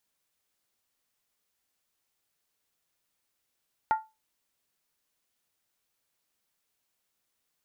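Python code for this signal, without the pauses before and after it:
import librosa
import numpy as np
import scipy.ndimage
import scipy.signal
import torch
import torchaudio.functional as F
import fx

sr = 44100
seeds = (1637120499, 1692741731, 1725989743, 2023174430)

y = fx.strike_skin(sr, length_s=0.63, level_db=-18, hz=877.0, decay_s=0.24, tilt_db=10, modes=5)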